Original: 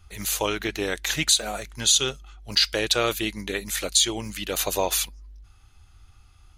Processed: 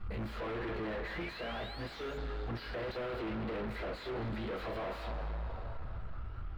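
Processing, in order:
pitch shifter swept by a sawtooth +2.5 semitones, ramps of 321 ms
flat-topped bell 2,700 Hz −8.5 dB 1 octave
log-companded quantiser 6 bits
convolution reverb, pre-delay 3 ms, DRR −9.5 dB
in parallel at −2.5 dB: downward compressor, threshold −45 dBFS, peak gain reduction 32.5 dB
on the sum: sound drawn into the spectrogram rise, 0:01.07–0:02.18, 1,800–7,200 Hz −29 dBFS
gain into a clipping stage and back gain 35.5 dB
high-frequency loss of the air 430 metres
feedback echo with a band-pass in the loop 225 ms, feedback 73%, band-pass 1,500 Hz, level −9 dB

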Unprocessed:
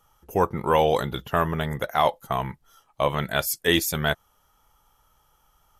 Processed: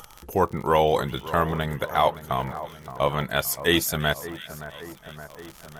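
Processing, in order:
surface crackle 70 per second −34 dBFS
echo with a time of its own for lows and highs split 1,800 Hz, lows 571 ms, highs 344 ms, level −14 dB
upward compression, threshold −33 dBFS

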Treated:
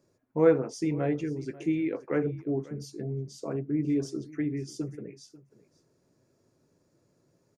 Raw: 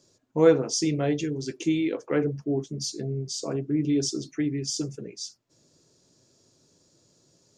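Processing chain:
flat-topped bell 4,900 Hz −13.5 dB
on a send: single-tap delay 541 ms −19.5 dB
on the sum: level −3 dB

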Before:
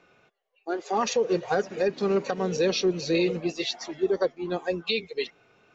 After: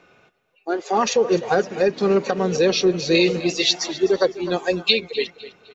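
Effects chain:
0:03.11–0:04.93: high-shelf EQ 2,900 Hz +9.5 dB
repeating echo 254 ms, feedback 34%, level −16.5 dB
level +6 dB

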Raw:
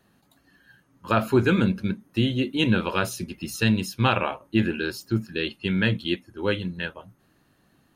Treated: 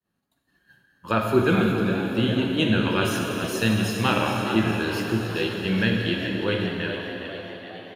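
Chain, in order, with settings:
downward expander −52 dBFS
echo with shifted repeats 417 ms, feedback 58%, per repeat +81 Hz, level −10 dB
dense smooth reverb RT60 3.4 s, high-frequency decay 1×, DRR 1 dB
level −1.5 dB

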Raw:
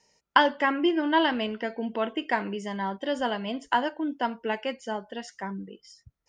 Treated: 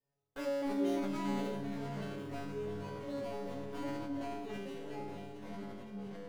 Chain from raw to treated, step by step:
running median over 41 samples
tuned comb filter 140 Hz, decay 0.89 s, harmonics all, mix 100%
delay that swaps between a low-pass and a high-pass 337 ms, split 800 Hz, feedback 75%, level −8 dB
delay with pitch and tempo change per echo 154 ms, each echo −6 semitones, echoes 3, each echo −6 dB
level that may fall only so fast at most 22 dB per second
level +5.5 dB

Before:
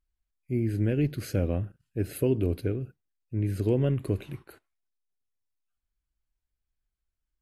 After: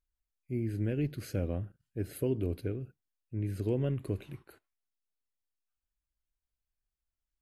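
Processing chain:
0:01.46–0:02.43: notch filter 2,600 Hz, Q 14
level −6 dB

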